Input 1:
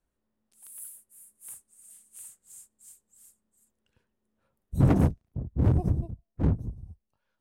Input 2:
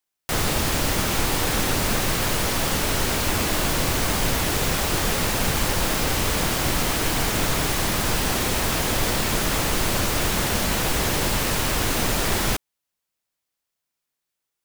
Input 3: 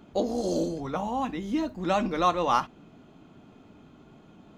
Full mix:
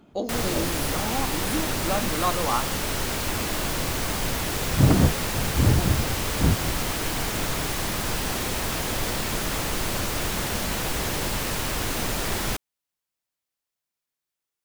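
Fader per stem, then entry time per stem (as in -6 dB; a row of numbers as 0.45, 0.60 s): +3.0, -4.5, -2.0 dB; 0.00, 0.00, 0.00 s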